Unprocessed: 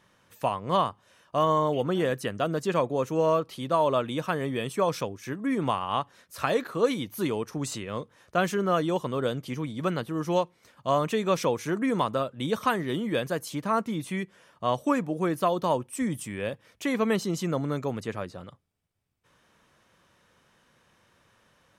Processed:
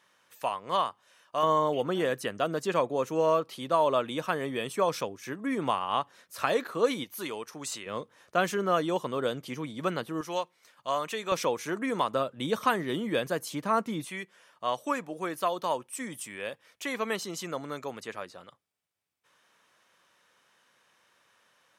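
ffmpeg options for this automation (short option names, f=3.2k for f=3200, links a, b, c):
-af "asetnsamples=n=441:p=0,asendcmd='1.43 highpass f 310;7.04 highpass f 960;7.86 highpass f 300;10.21 highpass f 1100;11.32 highpass f 440;12.14 highpass f 210;14.05 highpass f 830',highpass=f=830:p=1"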